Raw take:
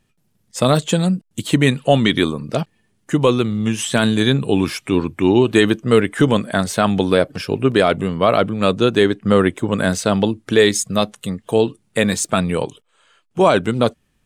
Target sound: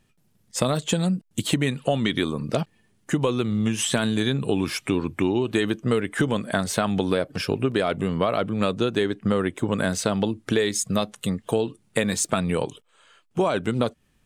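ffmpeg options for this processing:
ffmpeg -i in.wav -af "acompressor=threshold=-19dB:ratio=6" out.wav

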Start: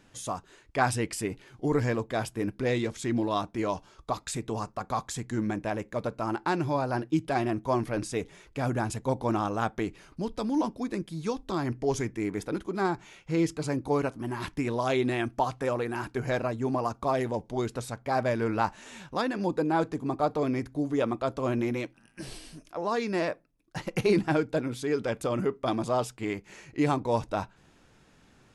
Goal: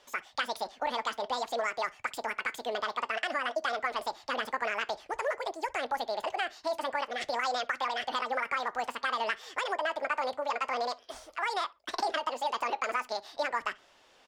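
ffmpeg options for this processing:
ffmpeg -i in.wav -filter_complex "[0:a]acrossover=split=260 3800:gain=0.141 1 0.0631[link_01][link_02][link_03];[link_01][link_02][link_03]amix=inputs=3:normalize=0,acompressor=threshold=-29dB:ratio=6,flanger=delay=4.2:depth=5:regen=-80:speed=0.26:shape=triangular,asplit=2[link_04][link_05];[link_05]adelay=120,lowpass=frequency=1200:poles=1,volume=-22dB,asplit=2[link_06][link_07];[link_07]adelay=120,lowpass=frequency=1200:poles=1,volume=0.25[link_08];[link_06][link_08]amix=inputs=2:normalize=0[link_09];[link_04][link_09]amix=inputs=2:normalize=0,asetrate=88200,aresample=44100,volume=6.5dB" out.wav

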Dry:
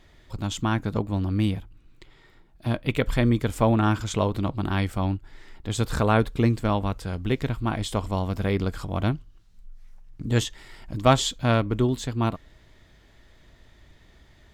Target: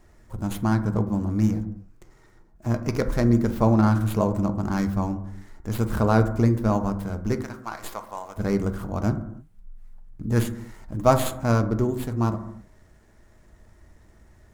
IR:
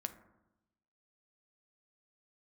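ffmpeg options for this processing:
-filter_complex "[0:a]asettb=1/sr,asplit=3[link_01][link_02][link_03];[link_01]atrim=end=7.364[link_04];[link_02]atrim=start=7.36:end=8.37,asetpts=PTS-STARTPTS,afade=type=in:duration=0.004:curve=qsin,afade=type=out:start_time=1.006:duration=0.004:curve=qsin,highpass=930[link_05];[link_03]atrim=start=8.366[link_06];[link_04][link_05]acrossfade=duration=0.004:curve1=hsin:curve2=qsin[link_07];[link_07][link_06]acrossfade=duration=0.004:curve1=qsin:curve2=hsin,acrossover=split=2000[link_08][link_09];[link_09]aeval=exprs='abs(val(0))':channel_layout=same[link_10];[link_08][link_10]amix=inputs=2:normalize=0[link_11];[1:a]atrim=start_sample=2205,afade=type=out:start_time=0.37:duration=0.01,atrim=end_sample=16758[link_12];[link_11][link_12]afir=irnorm=-1:irlink=0,volume=2dB"

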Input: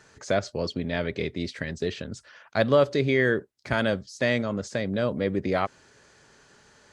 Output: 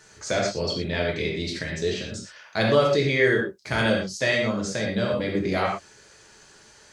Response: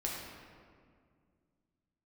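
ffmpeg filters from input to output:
-filter_complex "[0:a]highshelf=frequency=2800:gain=10[link_01];[1:a]atrim=start_sample=2205,afade=type=out:start_time=0.19:duration=0.01,atrim=end_sample=8820,asetrate=48510,aresample=44100[link_02];[link_01][link_02]afir=irnorm=-1:irlink=0"

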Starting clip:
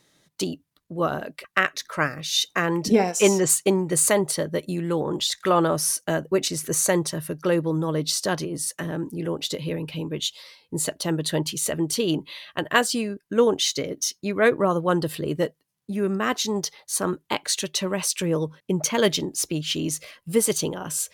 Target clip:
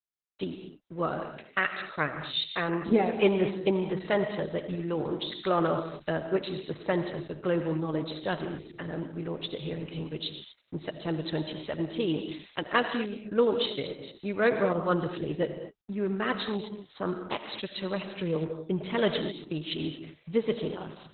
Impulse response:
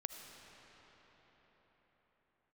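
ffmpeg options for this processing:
-filter_complex "[0:a]aeval=exprs='sgn(val(0))*max(abs(val(0))-0.00447,0)':channel_layout=same[link_01];[1:a]atrim=start_sample=2205,afade=type=out:start_time=0.3:duration=0.01,atrim=end_sample=13671[link_02];[link_01][link_02]afir=irnorm=-1:irlink=0,volume=-1.5dB" -ar 48000 -c:a libopus -b:a 8k

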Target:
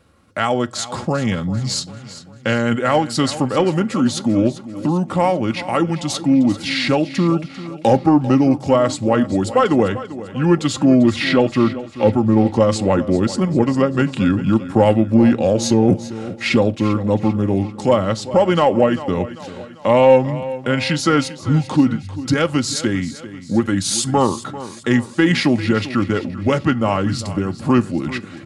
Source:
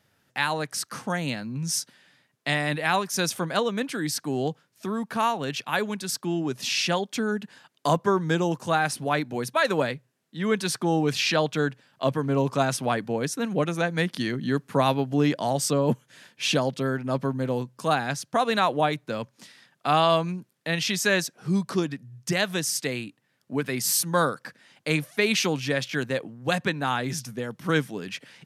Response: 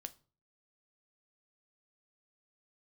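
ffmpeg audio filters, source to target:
-filter_complex "[0:a]tiltshelf=frequency=1100:gain=5,aecho=1:1:2.9:0.45,asplit=2[link_01][link_02];[link_02]acompressor=threshold=-31dB:ratio=6,volume=-1dB[link_03];[link_01][link_03]amix=inputs=2:normalize=0,asoftclip=type=tanh:threshold=-6dB,asetrate=35002,aresample=44100,atempo=1.25992,aecho=1:1:394|788|1182|1576:0.178|0.0836|0.0393|0.0185,asplit=2[link_04][link_05];[1:a]atrim=start_sample=2205[link_06];[link_05][link_06]afir=irnorm=-1:irlink=0,volume=2.5dB[link_07];[link_04][link_07]amix=inputs=2:normalize=0"

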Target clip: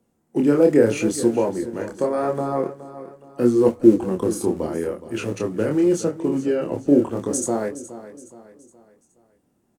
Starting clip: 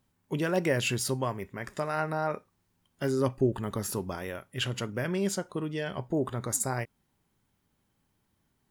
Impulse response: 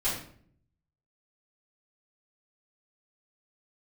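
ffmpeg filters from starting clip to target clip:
-filter_complex "[0:a]equalizer=frequency=520:width=0.8:gain=13,bandreject=frequency=50:width_type=h:width=6,bandreject=frequency=100:width_type=h:width=6,bandreject=frequency=150:width_type=h:width=6,acrossover=split=180|720|7000[link_01][link_02][link_03][link_04];[link_01]acrusher=bits=2:mode=log:mix=0:aa=0.000001[link_05];[link_05][link_02][link_03][link_04]amix=inputs=4:normalize=0,flanger=delay=20:depth=5.2:speed=0.9,asetrate=39249,aresample=44100,equalizer=frequency=250:width_type=o:width=1:gain=9,equalizer=frequency=4000:width_type=o:width=1:gain=-3,equalizer=frequency=8000:width_type=o:width=1:gain=7,aecho=1:1:419|838|1257|1676:0.188|0.0791|0.0332|0.014,volume=1dB"

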